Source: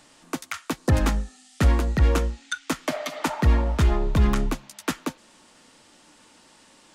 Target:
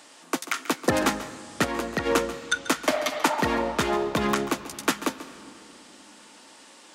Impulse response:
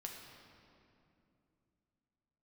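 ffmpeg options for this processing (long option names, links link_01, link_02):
-filter_complex "[0:a]asplit=2[link_01][link_02];[1:a]atrim=start_sample=2205,adelay=138[link_03];[link_02][link_03]afir=irnorm=-1:irlink=0,volume=-9.5dB[link_04];[link_01][link_04]amix=inputs=2:normalize=0,asplit=3[link_05][link_06][link_07];[link_05]afade=type=out:start_time=1.63:duration=0.02[link_08];[link_06]acompressor=threshold=-19dB:ratio=6,afade=type=in:start_time=1.63:duration=0.02,afade=type=out:start_time=2.05:duration=0.02[link_09];[link_07]afade=type=in:start_time=2.05:duration=0.02[link_10];[link_08][link_09][link_10]amix=inputs=3:normalize=0,highpass=300,volume=4.5dB"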